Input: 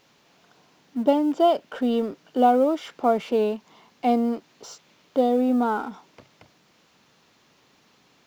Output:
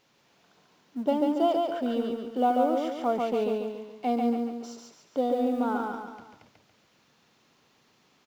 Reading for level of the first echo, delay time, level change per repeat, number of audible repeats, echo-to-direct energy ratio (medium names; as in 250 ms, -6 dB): -3.0 dB, 141 ms, -6.5 dB, 4, -2.0 dB